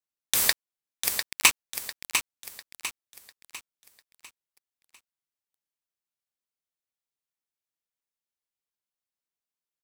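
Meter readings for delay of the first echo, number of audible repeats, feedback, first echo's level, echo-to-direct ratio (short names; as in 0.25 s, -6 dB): 0.699 s, 4, 40%, -7.0 dB, -6.0 dB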